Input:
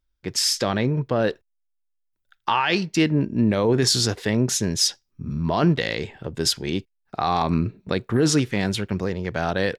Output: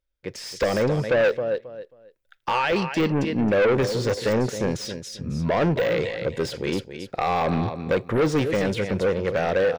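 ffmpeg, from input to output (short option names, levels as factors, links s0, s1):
-filter_complex "[0:a]dynaudnorm=f=280:g=3:m=2.82,equalizer=f=520:t=o:w=0.45:g=14.5,asplit=2[s0][s1];[s1]aecho=0:1:269|538|807:0.237|0.0498|0.0105[s2];[s0][s2]amix=inputs=2:normalize=0,deesser=0.55,asoftclip=type=tanh:threshold=0.335,equalizer=f=2200:t=o:w=1:g=5.5,volume=0.447"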